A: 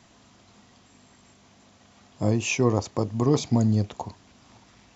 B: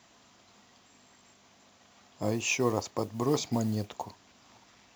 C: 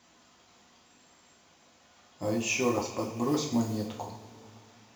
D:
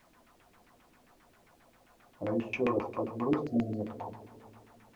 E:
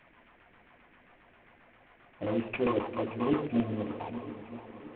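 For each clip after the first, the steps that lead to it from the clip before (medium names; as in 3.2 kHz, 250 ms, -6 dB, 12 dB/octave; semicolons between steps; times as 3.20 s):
bass shelf 260 Hz -10.5 dB; modulation noise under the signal 25 dB; trim -2 dB
two-slope reverb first 0.47 s, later 3.3 s, from -18 dB, DRR -1 dB; trim -3.5 dB
spectral selection erased 3.45–3.80 s, 750–3900 Hz; LFO low-pass saw down 7.5 Hz 300–2500 Hz; added noise pink -64 dBFS; trim -4 dB
CVSD coder 16 kbps; shuffle delay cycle 961 ms, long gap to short 1.5:1, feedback 45%, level -14 dB; band noise 1.5–2.4 kHz -69 dBFS; trim +1.5 dB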